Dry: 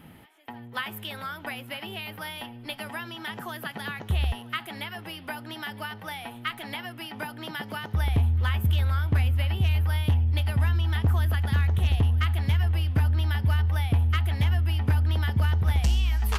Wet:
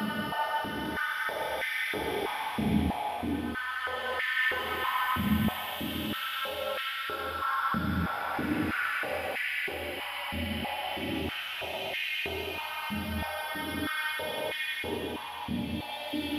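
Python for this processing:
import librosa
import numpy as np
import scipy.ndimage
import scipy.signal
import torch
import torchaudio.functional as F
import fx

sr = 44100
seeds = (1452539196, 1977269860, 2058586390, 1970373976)

y = fx.paulstretch(x, sr, seeds[0], factor=6.3, window_s=0.5, from_s=7.76)
y = y + 10.0 ** (-11.5 / 20.0) * np.pad(y, (int(857 * sr / 1000.0), 0))[:len(y)]
y = fx.filter_held_highpass(y, sr, hz=3.1, low_hz=210.0, high_hz=1900.0)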